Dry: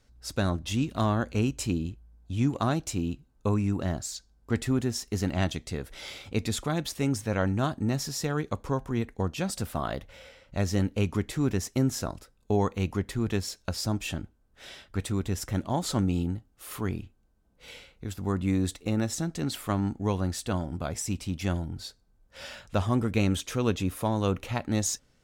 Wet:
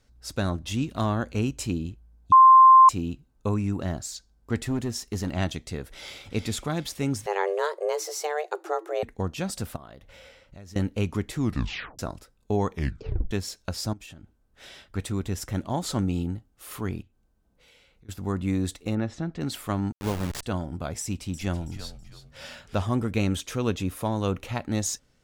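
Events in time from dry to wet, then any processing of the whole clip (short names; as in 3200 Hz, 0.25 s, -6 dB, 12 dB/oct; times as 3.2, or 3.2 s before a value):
2.32–2.89 bleep 1050 Hz -9 dBFS
4.61–5.33 hard clip -22 dBFS
5.88–6.31 echo throw 0.37 s, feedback 40%, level -7.5 dB
7.26–9.03 frequency shift +300 Hz
9.76–10.76 compressor 4:1, threshold -44 dBFS
11.38 tape stop 0.61 s
12.69 tape stop 0.62 s
13.93–14.85 compressor 10:1, threshold -41 dBFS
17.02–18.09 compressor 3:1, threshold -58 dBFS
18.95–19.41 LPF 2700 Hz
19.92–20.43 level-crossing sampler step -28 dBFS
21.01–22.82 frequency-shifting echo 0.326 s, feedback 33%, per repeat -110 Hz, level -11.5 dB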